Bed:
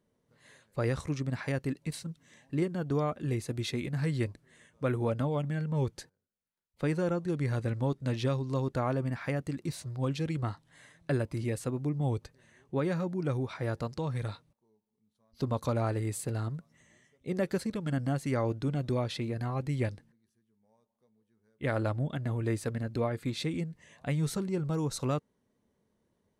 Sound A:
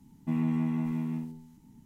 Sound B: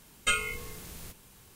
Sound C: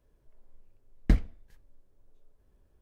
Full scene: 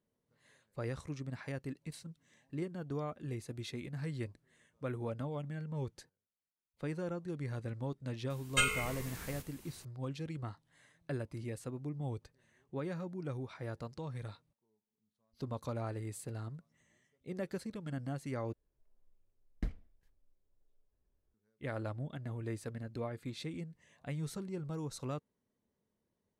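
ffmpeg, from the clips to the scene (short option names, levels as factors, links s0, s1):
-filter_complex "[0:a]volume=0.355[s0];[2:a]asplit=7[s1][s2][s3][s4][s5][s6][s7];[s2]adelay=97,afreqshift=-86,volume=0.141[s8];[s3]adelay=194,afreqshift=-172,volume=0.0871[s9];[s4]adelay=291,afreqshift=-258,volume=0.0543[s10];[s5]adelay=388,afreqshift=-344,volume=0.0335[s11];[s6]adelay=485,afreqshift=-430,volume=0.0209[s12];[s7]adelay=582,afreqshift=-516,volume=0.0129[s13];[s1][s8][s9][s10][s11][s12][s13]amix=inputs=7:normalize=0[s14];[s0]asplit=2[s15][s16];[s15]atrim=end=18.534[s17];[3:a]atrim=end=2.81,asetpts=PTS-STARTPTS,volume=0.188[s18];[s16]atrim=start=21.336[s19];[s14]atrim=end=1.55,asetpts=PTS-STARTPTS,volume=0.75,afade=t=in:d=0.004:c=hsin,afade=t=out:st=1.546:d=0.004:c=hsin,adelay=8300[s20];[s17][s18]acrossfade=d=0.004:c1=hsin:c2=hsin[s21];[s21][s19]acrossfade=d=0.004:c1=hsin:c2=hsin[s22];[s22][s20]amix=inputs=2:normalize=0"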